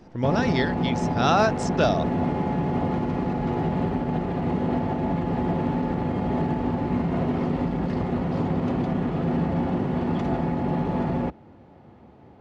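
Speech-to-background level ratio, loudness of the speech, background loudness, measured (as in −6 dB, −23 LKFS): 1.0 dB, −25.0 LKFS, −26.0 LKFS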